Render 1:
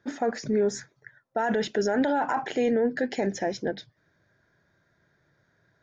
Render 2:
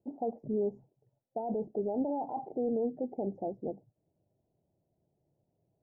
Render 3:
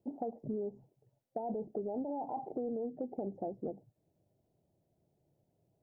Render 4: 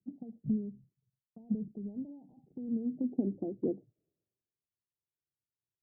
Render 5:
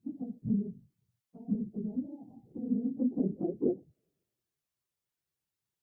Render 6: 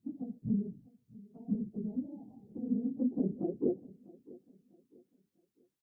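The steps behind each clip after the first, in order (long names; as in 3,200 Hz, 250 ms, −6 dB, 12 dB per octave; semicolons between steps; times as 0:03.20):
elliptic low-pass filter 800 Hz, stop band 50 dB; level −7 dB
downward compressor 6 to 1, threshold −36 dBFS, peak gain reduction 9 dB; level +1.5 dB
low-pass filter sweep 190 Hz → 420 Hz, 0:02.52–0:04.09; multiband upward and downward expander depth 100%
random phases in long frames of 50 ms; in parallel at −1 dB: downward compressor, threshold −39 dBFS, peak gain reduction 13 dB
repeating echo 648 ms, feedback 35%, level −21 dB; level −1.5 dB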